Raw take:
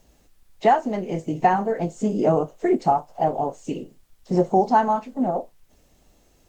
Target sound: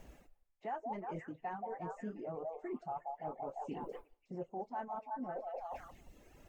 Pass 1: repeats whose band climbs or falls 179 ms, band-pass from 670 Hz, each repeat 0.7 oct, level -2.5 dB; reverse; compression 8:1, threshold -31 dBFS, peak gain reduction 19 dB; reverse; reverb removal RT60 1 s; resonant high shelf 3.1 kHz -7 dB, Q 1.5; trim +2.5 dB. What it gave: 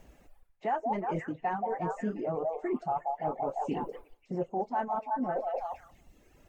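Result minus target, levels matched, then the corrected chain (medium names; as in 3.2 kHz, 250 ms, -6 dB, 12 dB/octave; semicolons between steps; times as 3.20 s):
compression: peak gain reduction -10 dB
repeats whose band climbs or falls 179 ms, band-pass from 670 Hz, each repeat 0.7 oct, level -2.5 dB; reverse; compression 8:1, threshold -42.5 dBFS, peak gain reduction 29 dB; reverse; reverb removal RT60 1 s; resonant high shelf 3.1 kHz -7 dB, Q 1.5; trim +2.5 dB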